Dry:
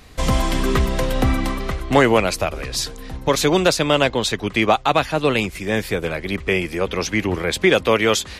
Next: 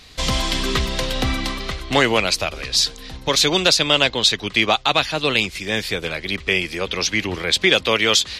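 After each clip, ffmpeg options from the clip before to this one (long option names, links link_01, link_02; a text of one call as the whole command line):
ffmpeg -i in.wav -af "equalizer=frequency=4100:width=0.71:gain=13.5,volume=-4.5dB" out.wav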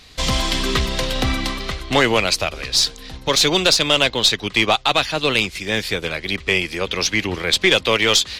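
ffmpeg -i in.wav -filter_complex "[0:a]asplit=2[link_01][link_02];[link_02]aeval=exprs='sgn(val(0))*max(abs(val(0))-0.0266,0)':channel_layout=same,volume=-10dB[link_03];[link_01][link_03]amix=inputs=2:normalize=0,aeval=exprs='(tanh(1.58*val(0)+0.25)-tanh(0.25))/1.58':channel_layout=same" out.wav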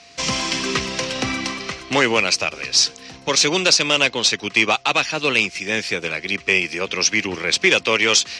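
ffmpeg -i in.wav -af "aeval=exprs='val(0)+0.00562*sin(2*PI*690*n/s)':channel_layout=same,highpass=150,equalizer=frequency=670:width_type=q:width=4:gain=-4,equalizer=frequency=2500:width_type=q:width=4:gain=5,equalizer=frequency=3600:width_type=q:width=4:gain=-6,equalizer=frequency=5700:width_type=q:width=4:gain=7,lowpass=frequency=8500:width=0.5412,lowpass=frequency=8500:width=1.3066,volume=-1dB" out.wav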